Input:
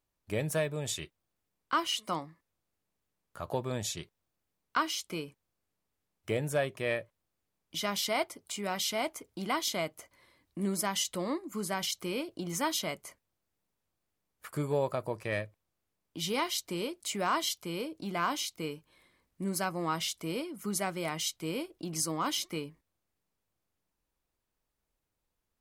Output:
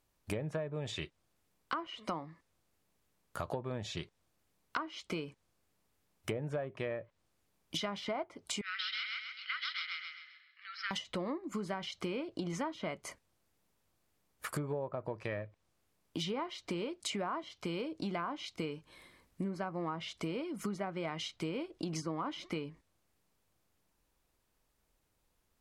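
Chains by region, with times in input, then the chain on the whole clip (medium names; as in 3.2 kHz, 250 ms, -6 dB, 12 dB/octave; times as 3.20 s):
8.61–10.91 s: Chebyshev band-pass 1.3–5.3 kHz, order 5 + distance through air 210 m + feedback delay 131 ms, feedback 41%, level -3 dB
whole clip: low-pass that closes with the level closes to 1.3 kHz, closed at -27.5 dBFS; compression 6:1, threshold -42 dBFS; trim +7 dB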